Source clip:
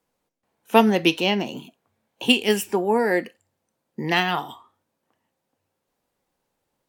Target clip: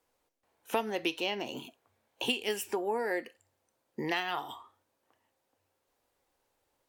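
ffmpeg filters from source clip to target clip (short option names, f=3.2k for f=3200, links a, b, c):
-af "equalizer=f=180:t=o:w=0.75:g=-13.5,acompressor=threshold=-32dB:ratio=3"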